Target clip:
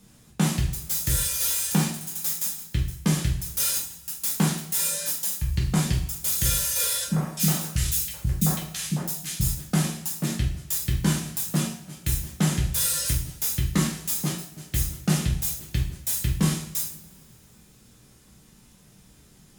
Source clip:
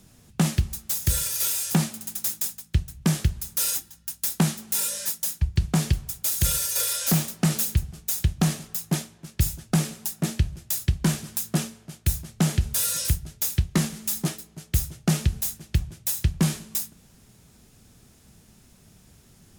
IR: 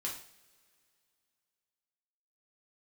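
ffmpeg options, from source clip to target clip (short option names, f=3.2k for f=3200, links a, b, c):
-filter_complex "[0:a]asettb=1/sr,asplit=3[a][b][c];[a]atrim=end=7.044[d];[b]atrim=start=7.04:end=9.41,asetpts=PTS-STARTPTS,afade=t=in:d=0.004:c=qsin,afade=t=out:st=2.366:d=0.004:c=qsin,acrossover=split=310|1700[e][f][g];[f]adelay=50[h];[g]adelay=330[i];[e][h][i]amix=inputs=3:normalize=0,atrim=end_sample=104517[j];[c]atrim=start=9.406[k];[d][j]acrossfade=d=0.004:c1=hsin:c2=qsin[l];[l][k]acrossfade=d=0.004:c1=qsin:c2=hsin[m];[1:a]atrim=start_sample=2205[n];[m][n]afir=irnorm=-1:irlink=0"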